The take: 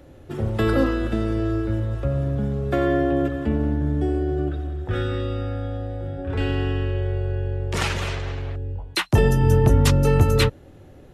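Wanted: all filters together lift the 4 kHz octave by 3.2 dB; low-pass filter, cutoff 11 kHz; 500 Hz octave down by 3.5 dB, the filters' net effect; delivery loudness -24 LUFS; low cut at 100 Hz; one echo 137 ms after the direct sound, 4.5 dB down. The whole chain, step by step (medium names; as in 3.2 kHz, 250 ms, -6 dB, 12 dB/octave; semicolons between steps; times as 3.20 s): high-pass 100 Hz; low-pass 11 kHz; peaking EQ 500 Hz -4.5 dB; peaking EQ 4 kHz +4 dB; delay 137 ms -4.5 dB; trim -0.5 dB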